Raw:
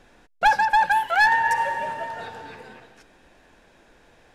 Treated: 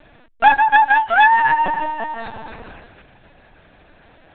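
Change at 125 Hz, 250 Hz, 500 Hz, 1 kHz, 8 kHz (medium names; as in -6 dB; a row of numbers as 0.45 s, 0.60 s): +5.0 dB, +10.0 dB, +4.5 dB, +6.5 dB, under -35 dB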